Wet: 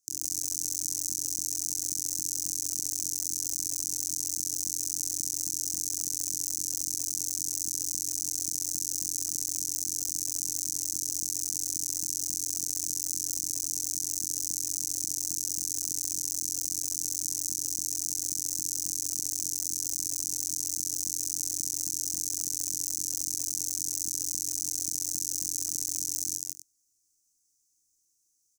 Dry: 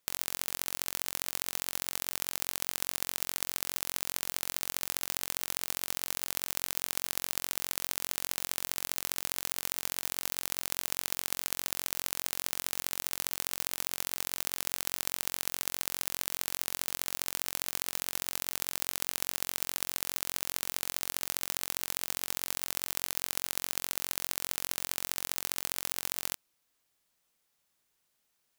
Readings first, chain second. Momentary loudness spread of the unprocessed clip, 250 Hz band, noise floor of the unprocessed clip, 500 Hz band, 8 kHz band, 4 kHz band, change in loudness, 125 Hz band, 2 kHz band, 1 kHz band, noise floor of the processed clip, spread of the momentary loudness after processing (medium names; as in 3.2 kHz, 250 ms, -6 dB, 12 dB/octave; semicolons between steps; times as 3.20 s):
0 LU, -1.0 dB, -77 dBFS, under -10 dB, +9.0 dB, -1.0 dB, +4.0 dB, -4.5 dB, under -20 dB, under -25 dB, -73 dBFS, 0 LU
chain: FFT filter 110 Hz 0 dB, 200 Hz -14 dB, 310 Hz +2 dB, 490 Hz -18 dB, 910 Hz -29 dB, 3.4 kHz -21 dB, 6.1 kHz +14 dB, 13 kHz -1 dB; loudspeakers at several distances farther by 10 m -2 dB, 60 m 0 dB, 94 m -10 dB; trim -5 dB